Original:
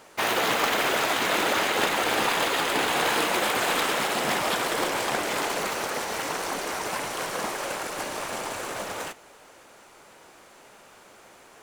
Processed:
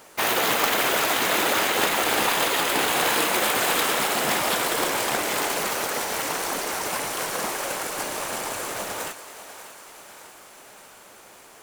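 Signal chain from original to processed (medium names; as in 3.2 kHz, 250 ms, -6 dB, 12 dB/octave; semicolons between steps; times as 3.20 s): treble shelf 9.1 kHz +10.5 dB; on a send: thinning echo 593 ms, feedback 63%, high-pass 350 Hz, level -13 dB; on the sum: trim +1 dB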